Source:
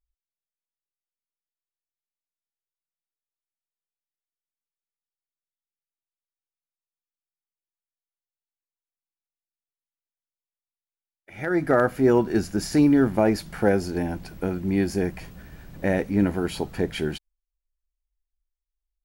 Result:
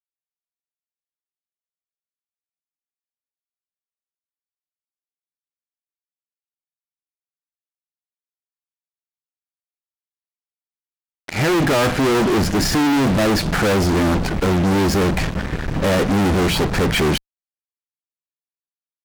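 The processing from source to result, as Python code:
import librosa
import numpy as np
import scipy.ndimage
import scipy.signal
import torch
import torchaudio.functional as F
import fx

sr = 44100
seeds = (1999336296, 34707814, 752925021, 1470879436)

y = scipy.signal.sosfilt(scipy.signal.butter(2, 7600.0, 'lowpass', fs=sr, output='sos'), x)
y = fx.high_shelf(y, sr, hz=3400.0, db=-9.0)
y = fx.fuzz(y, sr, gain_db=43.0, gate_db=-45.0)
y = F.gain(torch.from_numpy(y), -2.0).numpy()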